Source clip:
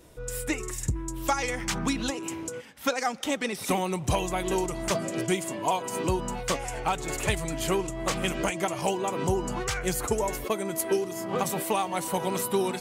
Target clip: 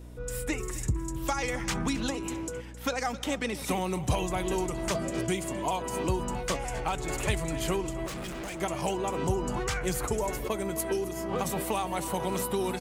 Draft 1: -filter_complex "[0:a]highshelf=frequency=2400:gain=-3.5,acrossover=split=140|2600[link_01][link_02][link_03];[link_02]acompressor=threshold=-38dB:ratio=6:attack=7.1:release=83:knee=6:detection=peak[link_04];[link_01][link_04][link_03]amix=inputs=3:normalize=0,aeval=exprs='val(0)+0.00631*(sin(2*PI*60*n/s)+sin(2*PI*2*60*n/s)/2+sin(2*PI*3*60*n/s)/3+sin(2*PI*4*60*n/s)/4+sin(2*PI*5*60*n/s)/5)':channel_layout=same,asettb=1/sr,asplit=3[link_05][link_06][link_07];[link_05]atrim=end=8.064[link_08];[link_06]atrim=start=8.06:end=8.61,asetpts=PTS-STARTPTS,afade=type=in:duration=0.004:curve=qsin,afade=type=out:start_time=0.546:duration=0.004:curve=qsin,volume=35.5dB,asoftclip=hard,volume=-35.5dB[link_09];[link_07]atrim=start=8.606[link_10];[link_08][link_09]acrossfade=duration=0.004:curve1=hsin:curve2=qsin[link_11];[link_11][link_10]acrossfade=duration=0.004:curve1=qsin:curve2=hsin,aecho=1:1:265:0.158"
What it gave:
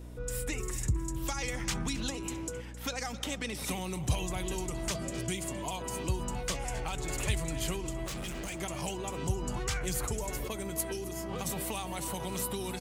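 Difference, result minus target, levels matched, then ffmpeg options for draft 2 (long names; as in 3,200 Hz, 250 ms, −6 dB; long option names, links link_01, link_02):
downward compressor: peak gain reduction +10 dB
-filter_complex "[0:a]highshelf=frequency=2400:gain=-3.5,acrossover=split=140|2600[link_01][link_02][link_03];[link_02]acompressor=threshold=-26dB:ratio=6:attack=7.1:release=83:knee=6:detection=peak[link_04];[link_01][link_04][link_03]amix=inputs=3:normalize=0,aeval=exprs='val(0)+0.00631*(sin(2*PI*60*n/s)+sin(2*PI*2*60*n/s)/2+sin(2*PI*3*60*n/s)/3+sin(2*PI*4*60*n/s)/4+sin(2*PI*5*60*n/s)/5)':channel_layout=same,asettb=1/sr,asplit=3[link_05][link_06][link_07];[link_05]atrim=end=8.064[link_08];[link_06]atrim=start=8.06:end=8.61,asetpts=PTS-STARTPTS,afade=type=in:duration=0.004:curve=qsin,afade=type=out:start_time=0.546:duration=0.004:curve=qsin,volume=35.5dB,asoftclip=hard,volume=-35.5dB[link_09];[link_07]atrim=start=8.606[link_10];[link_08][link_09]acrossfade=duration=0.004:curve1=hsin:curve2=qsin[link_11];[link_11][link_10]acrossfade=duration=0.004:curve1=qsin:curve2=hsin,aecho=1:1:265:0.158"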